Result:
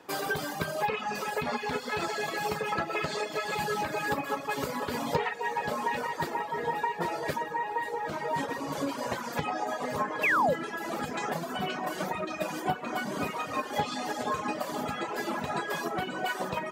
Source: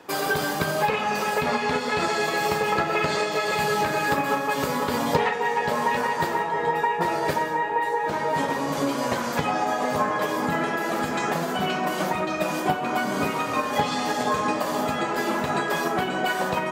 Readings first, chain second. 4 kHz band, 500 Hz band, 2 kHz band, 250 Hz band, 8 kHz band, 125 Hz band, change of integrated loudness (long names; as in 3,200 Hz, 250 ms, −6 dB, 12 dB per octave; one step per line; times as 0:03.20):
−7.5 dB, −7.5 dB, −6.5 dB, −8.0 dB, −7.5 dB, −7.0 dB, −7.0 dB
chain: feedback delay with all-pass diffusion 1,637 ms, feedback 46%, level −12.5 dB
sound drawn into the spectrogram fall, 0:10.23–0:10.54, 460–2,800 Hz −19 dBFS
reverb reduction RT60 1.1 s
level −5.5 dB